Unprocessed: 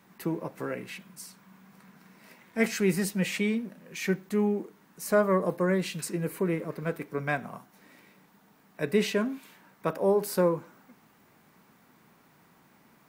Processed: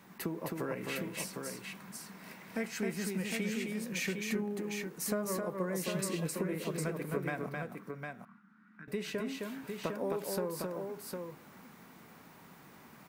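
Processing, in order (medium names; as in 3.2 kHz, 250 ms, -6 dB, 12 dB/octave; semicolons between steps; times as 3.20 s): compression 10:1, threshold -36 dBFS, peak gain reduction 18.5 dB; 7.49–8.88 s: two resonant band-passes 550 Hz, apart 2.7 oct; multi-tap echo 263/756 ms -3.5/-5 dB; trim +2.5 dB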